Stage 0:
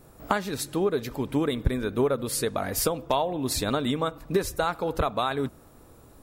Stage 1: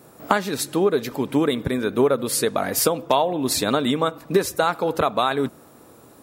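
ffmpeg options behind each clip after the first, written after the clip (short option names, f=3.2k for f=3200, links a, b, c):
-af "highpass=160,volume=6dB"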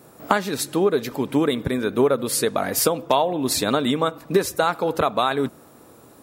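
-af anull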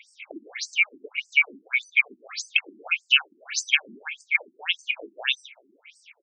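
-filter_complex "[0:a]afftfilt=real='real(if(lt(b,920),b+92*(1-2*mod(floor(b/92),2)),b),0)':imag='imag(if(lt(b,920),b+92*(1-2*mod(floor(b/92),2)),b),0)':win_size=2048:overlap=0.75,asplit=2[a][b];[b]adelay=384,lowpass=f=830:p=1,volume=-16.5dB,asplit=2[c][d];[d]adelay=384,lowpass=f=830:p=1,volume=0.53,asplit=2[e][f];[f]adelay=384,lowpass=f=830:p=1,volume=0.53,asplit=2[g][h];[h]adelay=384,lowpass=f=830:p=1,volume=0.53,asplit=2[i][j];[j]adelay=384,lowpass=f=830:p=1,volume=0.53[k];[a][c][e][g][i][k]amix=inputs=6:normalize=0,afftfilt=real='re*between(b*sr/1024,260*pow(6500/260,0.5+0.5*sin(2*PI*1.7*pts/sr))/1.41,260*pow(6500/260,0.5+0.5*sin(2*PI*1.7*pts/sr))*1.41)':imag='im*between(b*sr/1024,260*pow(6500/260,0.5+0.5*sin(2*PI*1.7*pts/sr))/1.41,260*pow(6500/260,0.5+0.5*sin(2*PI*1.7*pts/sr))*1.41)':win_size=1024:overlap=0.75,volume=3dB"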